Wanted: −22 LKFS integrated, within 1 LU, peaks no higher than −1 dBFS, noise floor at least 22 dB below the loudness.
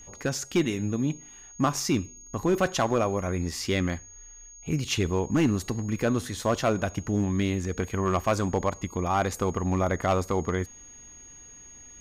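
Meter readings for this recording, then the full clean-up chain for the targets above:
share of clipped samples 0.5%; peaks flattened at −16.0 dBFS; interfering tone 6,600 Hz; level of the tone −46 dBFS; integrated loudness −27.5 LKFS; sample peak −16.0 dBFS; target loudness −22.0 LKFS
→ clipped peaks rebuilt −16 dBFS
notch filter 6,600 Hz, Q 30
level +5.5 dB

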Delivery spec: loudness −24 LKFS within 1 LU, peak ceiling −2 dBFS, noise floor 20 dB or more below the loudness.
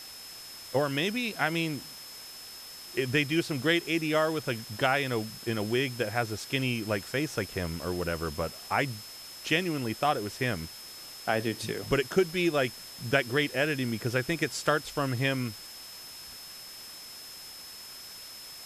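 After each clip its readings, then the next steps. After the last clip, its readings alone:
interfering tone 5,200 Hz; level of the tone −45 dBFS; background noise floor −45 dBFS; target noise floor −50 dBFS; integrated loudness −29.5 LKFS; sample peak −10.5 dBFS; target loudness −24.0 LKFS
→ notch filter 5,200 Hz, Q 30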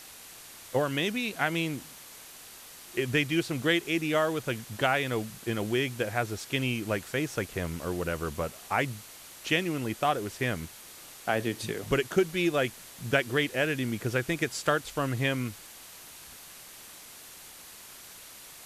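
interfering tone none found; background noise floor −48 dBFS; target noise floor −50 dBFS
→ broadband denoise 6 dB, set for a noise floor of −48 dBFS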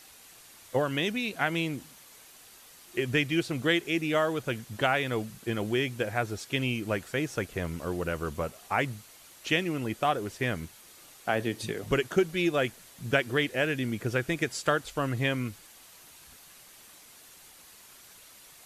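background noise floor −53 dBFS; integrated loudness −29.5 LKFS; sample peak −10.5 dBFS; target loudness −24.0 LKFS
→ level +5.5 dB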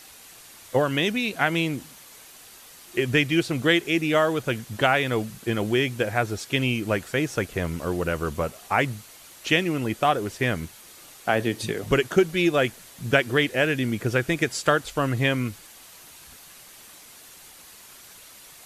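integrated loudness −24.5 LKFS; sample peak −5.0 dBFS; background noise floor −48 dBFS

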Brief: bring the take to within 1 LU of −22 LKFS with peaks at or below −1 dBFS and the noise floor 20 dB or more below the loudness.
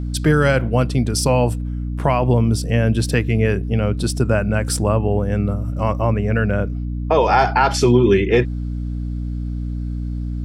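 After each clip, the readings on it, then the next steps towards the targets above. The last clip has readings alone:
mains hum 60 Hz; hum harmonics up to 300 Hz; level of the hum −22 dBFS; integrated loudness −19.0 LKFS; sample peak −3.5 dBFS; target loudness −22.0 LKFS
→ hum removal 60 Hz, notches 5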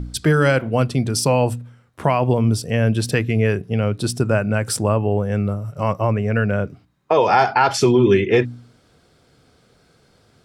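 mains hum none found; integrated loudness −19.0 LKFS; sample peak −4.5 dBFS; target loudness −22.0 LKFS
→ level −3 dB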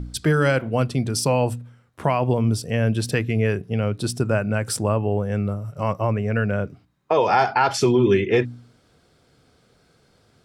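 integrated loudness −22.0 LKFS; sample peak −7.5 dBFS; background noise floor −60 dBFS

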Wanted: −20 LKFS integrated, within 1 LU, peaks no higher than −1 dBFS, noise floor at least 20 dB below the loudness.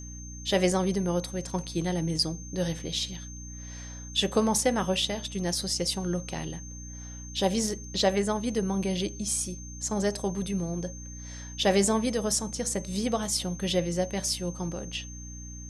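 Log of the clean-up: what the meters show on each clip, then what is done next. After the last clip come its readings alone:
mains hum 60 Hz; hum harmonics up to 300 Hz; level of the hum −40 dBFS; interfering tone 6,300 Hz; level of the tone −44 dBFS; integrated loudness −28.5 LKFS; sample peak −10.5 dBFS; target loudness −20.0 LKFS
→ hum removal 60 Hz, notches 5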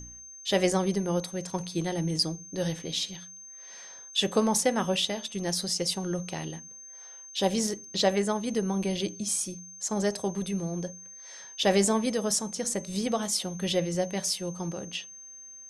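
mains hum none found; interfering tone 6,300 Hz; level of the tone −44 dBFS
→ notch filter 6,300 Hz, Q 30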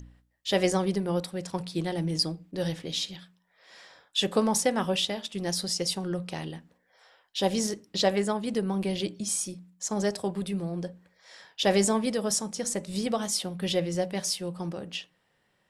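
interfering tone none found; integrated loudness −29.0 LKFS; sample peak −11.0 dBFS; target loudness −20.0 LKFS
→ level +9 dB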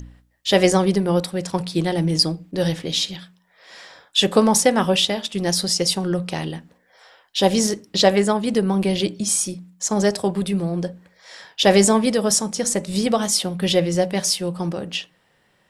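integrated loudness −20.0 LKFS; sample peak −2.0 dBFS; background noise floor −62 dBFS

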